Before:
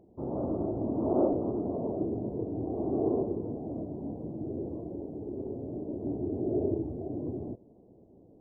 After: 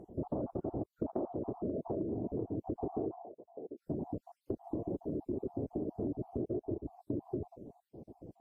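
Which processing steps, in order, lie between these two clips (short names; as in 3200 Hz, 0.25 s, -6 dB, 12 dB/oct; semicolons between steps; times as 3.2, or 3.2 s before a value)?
random spectral dropouts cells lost 50%; compressor 16:1, threshold -41 dBFS, peak gain reduction 20 dB; 3.15–3.76 band-pass 830 Hz -> 400 Hz, Q 4.6; gain +8.5 dB; Vorbis 48 kbps 44100 Hz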